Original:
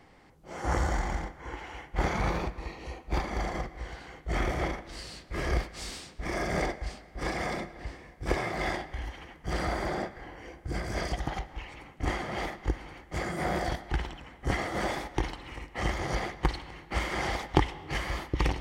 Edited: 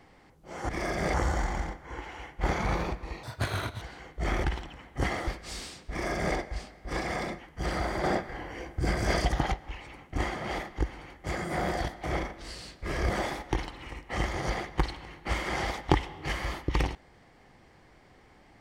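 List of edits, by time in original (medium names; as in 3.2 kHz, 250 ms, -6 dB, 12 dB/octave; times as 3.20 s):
2.78–3.90 s: speed 191%
4.52–5.58 s: swap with 13.91–14.75 s
6.21–6.66 s: copy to 0.69 s
7.69–9.26 s: delete
9.91–11.41 s: gain +5.5 dB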